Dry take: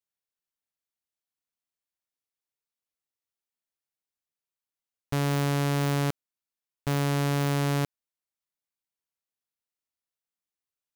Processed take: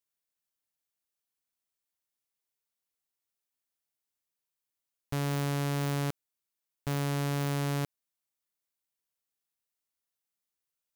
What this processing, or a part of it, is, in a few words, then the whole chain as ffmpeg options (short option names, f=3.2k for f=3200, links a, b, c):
soft clipper into limiter: -af "highshelf=f=6.7k:g=5.5,asoftclip=type=tanh:threshold=-18dB,alimiter=limit=-23dB:level=0:latency=1"